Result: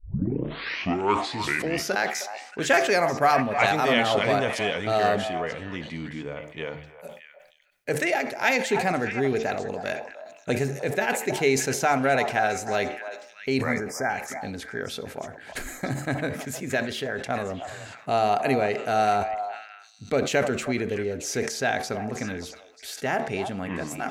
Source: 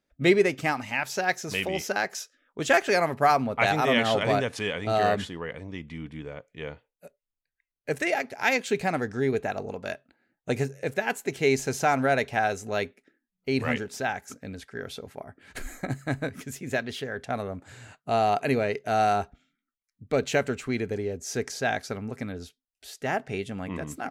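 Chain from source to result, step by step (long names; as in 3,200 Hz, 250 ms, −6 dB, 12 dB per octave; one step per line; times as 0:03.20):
turntable start at the beginning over 1.97 s
low-shelf EQ 79 Hz −10 dB
hum removal 74.89 Hz, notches 17
in parallel at +0.5 dB: downward compressor, threshold −38 dBFS, peak gain reduction 20 dB
on the sum: time-frequency box erased 0:13.61–0:14.21, 2,400–4,800 Hz
echo through a band-pass that steps 312 ms, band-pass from 810 Hz, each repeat 1.4 octaves, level −7.5 dB
on a send at −20.5 dB: convolution reverb RT60 1.0 s, pre-delay 59 ms
on the sum: level that may fall only so fast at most 81 dB per second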